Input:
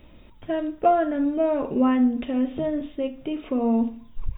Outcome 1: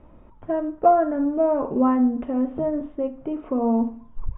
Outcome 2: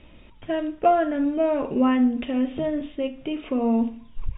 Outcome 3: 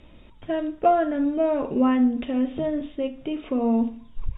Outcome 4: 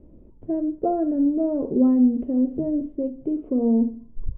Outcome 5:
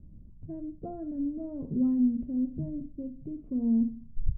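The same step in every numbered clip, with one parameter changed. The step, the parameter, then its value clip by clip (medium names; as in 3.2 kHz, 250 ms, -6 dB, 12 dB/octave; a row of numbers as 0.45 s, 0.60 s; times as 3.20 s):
resonant low-pass, frequency: 1.1 kHz, 3 kHz, 7.6 kHz, 400 Hz, 160 Hz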